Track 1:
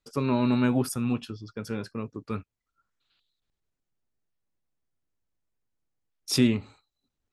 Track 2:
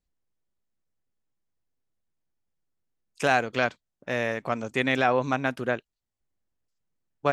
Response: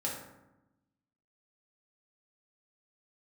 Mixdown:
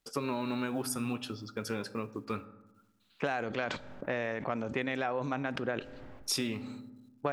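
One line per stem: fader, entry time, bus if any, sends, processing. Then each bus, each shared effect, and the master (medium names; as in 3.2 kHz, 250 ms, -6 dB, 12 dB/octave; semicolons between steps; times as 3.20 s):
+2.5 dB, 0.00 s, send -15 dB, bass shelf 300 Hz -8 dB; companded quantiser 8-bit
+2.0 dB, 0.00 s, send -20.5 dB, treble shelf 3.5 kHz -8 dB; level-controlled noise filter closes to 1.6 kHz, open at -20 dBFS; decay stretcher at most 49 dB/s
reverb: on, RT60 0.95 s, pre-delay 3 ms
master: bass shelf 130 Hz -4.5 dB; compression 6:1, threshold -30 dBFS, peak gain reduction 14.5 dB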